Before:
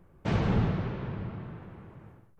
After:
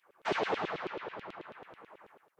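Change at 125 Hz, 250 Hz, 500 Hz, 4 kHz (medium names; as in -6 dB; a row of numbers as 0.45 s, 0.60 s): -24.5 dB, -12.0 dB, +0.5 dB, +2.5 dB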